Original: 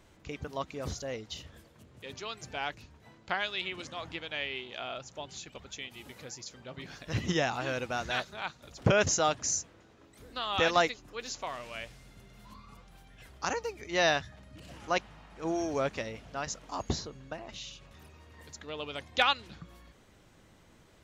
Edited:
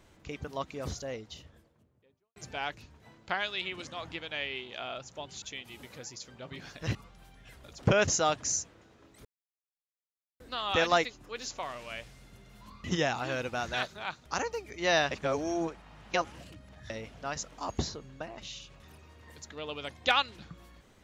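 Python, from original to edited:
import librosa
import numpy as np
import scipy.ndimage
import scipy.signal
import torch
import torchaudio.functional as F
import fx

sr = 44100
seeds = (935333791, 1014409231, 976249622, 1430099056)

y = fx.studio_fade_out(x, sr, start_s=0.86, length_s=1.5)
y = fx.edit(y, sr, fx.cut(start_s=5.42, length_s=0.26),
    fx.swap(start_s=7.21, length_s=1.42, other_s=12.68, other_length_s=0.69),
    fx.insert_silence(at_s=10.24, length_s=1.15),
    fx.reverse_span(start_s=14.22, length_s=1.79), tone=tone)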